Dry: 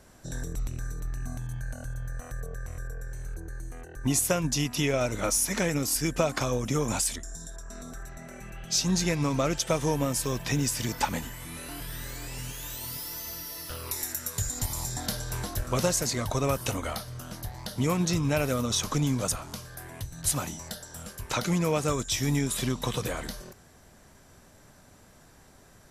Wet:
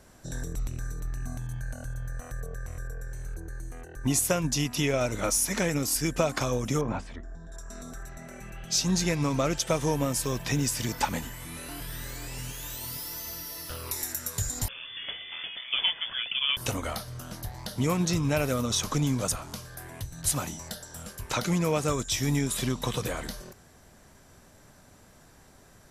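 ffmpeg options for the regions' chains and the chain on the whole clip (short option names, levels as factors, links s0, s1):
-filter_complex "[0:a]asettb=1/sr,asplit=3[s0][s1][s2];[s0]atrim=end=6.814[s3];[s1]atrim=start=6.81:end=7.52,asetpts=PTS-STARTPTS,afade=t=in:d=0.004:c=qsin,afade=t=out:st=0.706:d=0.004:c=qsin,lowpass=1600,bandreject=f=50:t=h:w=6,bandreject=f=100:t=h:w=6,bandreject=f=150:t=h:w=6,bandreject=f=200:t=h:w=6,bandreject=f=250:t=h:w=6,bandreject=f=300:t=h:w=6,bandreject=f=350:t=h:w=6,bandreject=f=400:t=h:w=6[s4];[s2]atrim=start=7.516[s5];[s3][s4]acrossfade=d=0.004:c1=hsin:c2=qsin[s6];[s6][s5]acrossfade=d=0.004:c1=qsin:c2=hsin,asettb=1/sr,asplit=3[s7][s8][s9];[s7]atrim=end=14.684[s10];[s8]atrim=start=14.68:end=16.57,asetpts=PTS-STARTPTS,afade=t=in:d=0.004:c=qsin,afade=t=out:st=1.886:d=0.004:c=qsin,highpass=170,lowpass=f=3100:t=q:w=0.5098,lowpass=f=3100:t=q:w=0.6013,lowpass=f=3100:t=q:w=0.9,lowpass=f=3100:t=q:w=2.563,afreqshift=-3600[s11];[s9]atrim=start=16.566[s12];[s10][s11]acrossfade=d=0.004:c1=hsin:c2=qsin[s13];[s13][s12]acrossfade=d=0.004:c1=qsin:c2=hsin"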